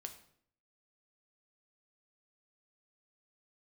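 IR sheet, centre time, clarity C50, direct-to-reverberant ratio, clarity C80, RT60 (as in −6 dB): 10 ms, 11.0 dB, 5.0 dB, 14.0 dB, 0.60 s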